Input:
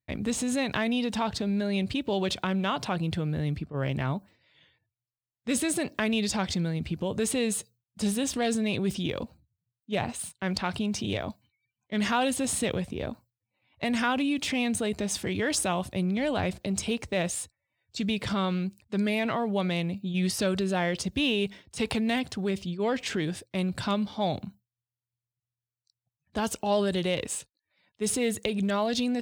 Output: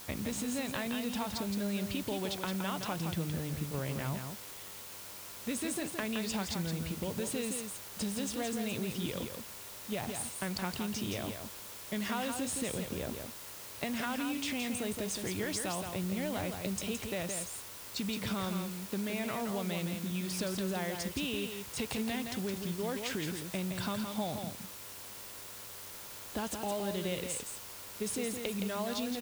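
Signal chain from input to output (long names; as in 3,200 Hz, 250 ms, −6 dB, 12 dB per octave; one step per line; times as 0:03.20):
downward compressor 4 to 1, threshold −35 dBFS, peak gain reduction 12 dB
hum with harmonics 100 Hz, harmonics 14, −59 dBFS −1 dB per octave
bit-depth reduction 8 bits, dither triangular
on a send: single-tap delay 168 ms −6 dB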